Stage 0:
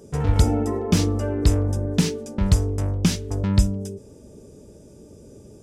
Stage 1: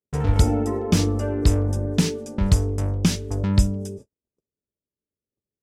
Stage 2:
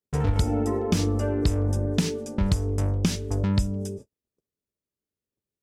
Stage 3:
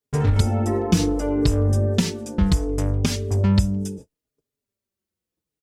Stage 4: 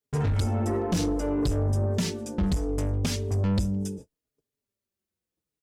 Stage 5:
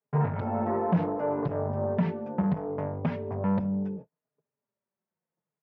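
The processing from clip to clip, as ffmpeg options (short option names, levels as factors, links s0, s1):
-af "agate=range=0.00355:threshold=0.0126:ratio=16:detection=peak"
-af "acompressor=threshold=0.112:ratio=4"
-filter_complex "[0:a]asplit=2[s0][s1];[s1]adelay=4.4,afreqshift=-0.69[s2];[s0][s2]amix=inputs=2:normalize=1,volume=2.24"
-af "asoftclip=type=tanh:threshold=0.133,volume=0.75"
-af "highpass=f=130:w=0.5412,highpass=f=130:w=1.3066,equalizer=f=160:t=q:w=4:g=6,equalizer=f=310:t=q:w=4:g=-9,equalizer=f=630:t=q:w=4:g=6,equalizer=f=930:t=q:w=4:g=8,lowpass=f=2000:w=0.5412,lowpass=f=2000:w=1.3066"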